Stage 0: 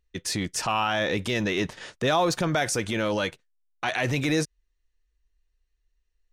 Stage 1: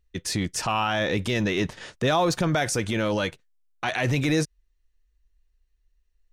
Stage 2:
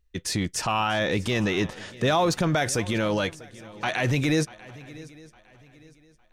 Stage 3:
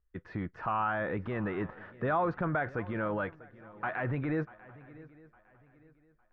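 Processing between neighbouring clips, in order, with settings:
bass shelf 190 Hz +5.5 dB
shuffle delay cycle 857 ms, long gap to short 3:1, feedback 31%, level -20 dB
four-pole ladder low-pass 1.7 kHz, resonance 45%

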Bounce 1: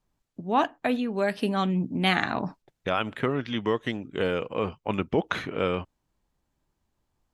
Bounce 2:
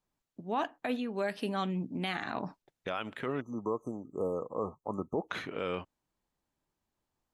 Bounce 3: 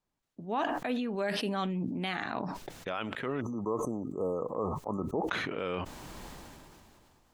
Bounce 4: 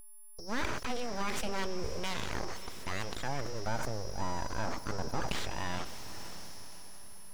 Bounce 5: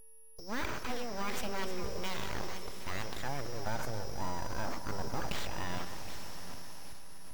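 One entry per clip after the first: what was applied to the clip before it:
spectral selection erased 3.41–5.28 s, 1.3–5.9 kHz; bass shelf 130 Hz -9.5 dB; peak limiter -16.5 dBFS, peak gain reduction 8.5 dB; trim -5 dB
treble shelf 9.5 kHz -7 dB; decay stretcher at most 22 dB/s
whistle 5.4 kHz -47 dBFS; full-wave rectifier; echo that smears into a reverb 546 ms, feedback 54%, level -14 dB
backward echo that repeats 385 ms, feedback 54%, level -10 dB; in parallel at -4 dB: short-mantissa float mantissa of 2-bit; on the sum: careless resampling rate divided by 2×, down none, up hold; trim -6.5 dB

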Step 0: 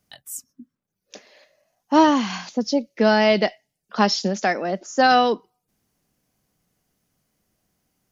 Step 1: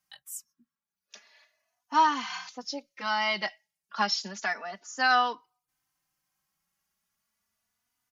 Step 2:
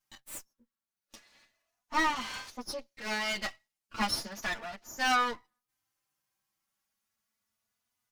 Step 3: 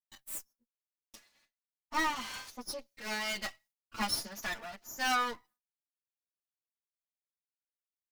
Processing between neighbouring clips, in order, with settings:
resonant low shelf 710 Hz -12 dB, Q 1.5; endless flanger 3.3 ms +0.32 Hz; trim -3.5 dB
comb filter that takes the minimum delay 8.9 ms; in parallel at -6 dB: saturation -23.5 dBFS, distortion -11 dB; on the sum: trim -5 dB
expander -57 dBFS; treble shelf 9.8 kHz +11.5 dB; trim -3.5 dB

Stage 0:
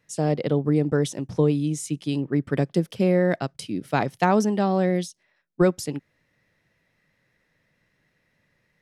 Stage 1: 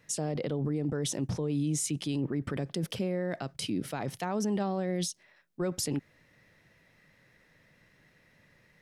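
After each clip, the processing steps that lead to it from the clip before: in parallel at +0.5 dB: compressor with a negative ratio -32 dBFS, ratio -1; on the sum: peak limiter -17 dBFS, peak gain reduction 11 dB; trim -6 dB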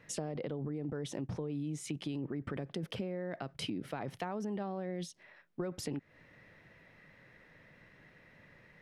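tone controls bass -2 dB, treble -13 dB; compression, threshold -40 dBFS, peak gain reduction 12 dB; trim +4.5 dB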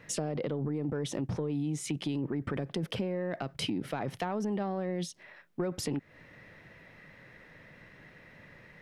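saturation -27 dBFS, distortion -24 dB; trim +6 dB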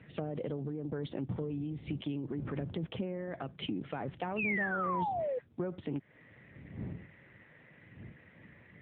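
wind noise 140 Hz -44 dBFS; painted sound fall, 4.36–5.39 s, 480–2800 Hz -30 dBFS; trim -3 dB; AMR-NB 7.95 kbps 8 kHz

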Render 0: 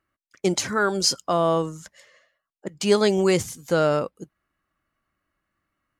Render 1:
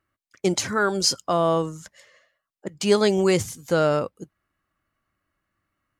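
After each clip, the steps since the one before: peaking EQ 100 Hz +5.5 dB 0.43 oct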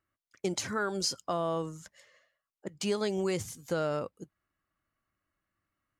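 compression 3:1, threshold -21 dBFS, peak gain reduction 6.5 dB; trim -7 dB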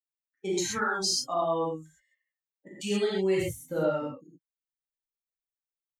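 expander on every frequency bin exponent 2; reverberation, pre-delay 3 ms, DRR -6.5 dB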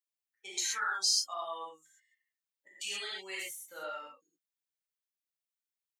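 high-pass 1.5 kHz 12 dB/octave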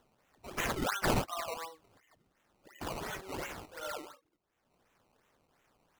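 upward compressor, threshold -54 dBFS; decimation with a swept rate 18×, swing 100% 2.8 Hz

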